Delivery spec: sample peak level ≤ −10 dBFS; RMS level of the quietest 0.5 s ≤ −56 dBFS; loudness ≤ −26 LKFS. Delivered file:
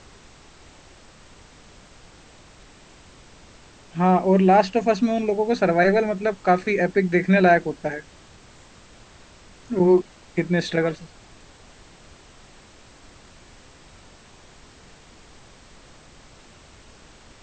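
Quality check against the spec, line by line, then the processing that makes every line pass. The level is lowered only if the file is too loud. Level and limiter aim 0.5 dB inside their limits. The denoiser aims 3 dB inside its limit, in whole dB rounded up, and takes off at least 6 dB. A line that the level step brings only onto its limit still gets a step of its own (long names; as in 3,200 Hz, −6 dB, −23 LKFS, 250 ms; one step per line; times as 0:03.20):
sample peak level −5.0 dBFS: out of spec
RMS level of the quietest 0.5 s −49 dBFS: out of spec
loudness −20.5 LKFS: out of spec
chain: broadband denoise 6 dB, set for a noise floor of −49 dBFS
level −6 dB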